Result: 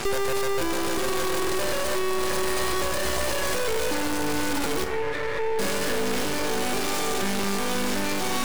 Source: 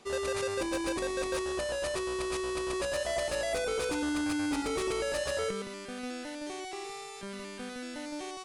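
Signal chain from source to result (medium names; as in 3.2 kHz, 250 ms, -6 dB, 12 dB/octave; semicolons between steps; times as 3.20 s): comb of notches 660 Hz; echo that smears into a reverb 609 ms, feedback 48%, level -5 dB; in parallel at -6.5 dB: fuzz box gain 54 dB, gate -60 dBFS; 4.84–5.59 s: on the sum: two resonant band-passes 940 Hz, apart 2 oct; on a send at -9 dB: reverberation RT60 2.1 s, pre-delay 7 ms; on the sum: peak limiter -21.5 dBFS, peak gain reduction 10.5 dB; half-wave rectifier; trim +5 dB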